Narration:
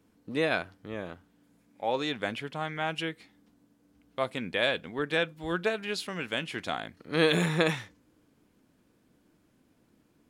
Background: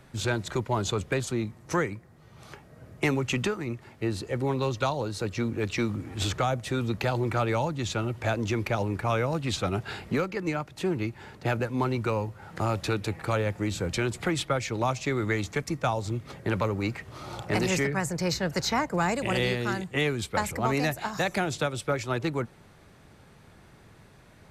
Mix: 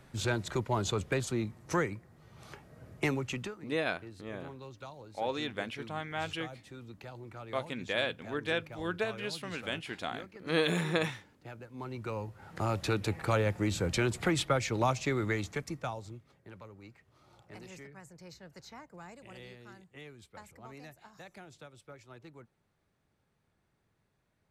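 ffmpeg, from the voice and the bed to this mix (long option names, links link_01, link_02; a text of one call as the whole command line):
ffmpeg -i stem1.wav -i stem2.wav -filter_complex "[0:a]adelay=3350,volume=-4.5dB[link_01];[1:a]volume=14.5dB,afade=type=out:start_time=2.93:duration=0.72:silence=0.158489,afade=type=in:start_time=11.68:duration=1.45:silence=0.125893,afade=type=out:start_time=14.85:duration=1.46:silence=0.0841395[link_02];[link_01][link_02]amix=inputs=2:normalize=0" out.wav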